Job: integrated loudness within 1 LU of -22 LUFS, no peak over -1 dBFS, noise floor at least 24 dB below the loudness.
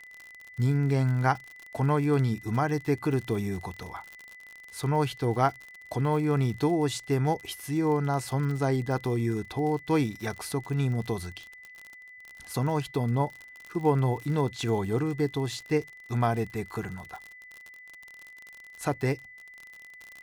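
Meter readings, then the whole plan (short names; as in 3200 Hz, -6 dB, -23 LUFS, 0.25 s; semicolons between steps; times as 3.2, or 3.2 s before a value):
ticks 55/s; steady tone 2000 Hz; tone level -46 dBFS; loudness -28.5 LUFS; peak -10.0 dBFS; loudness target -22.0 LUFS
-> de-click; notch 2000 Hz, Q 30; gain +6.5 dB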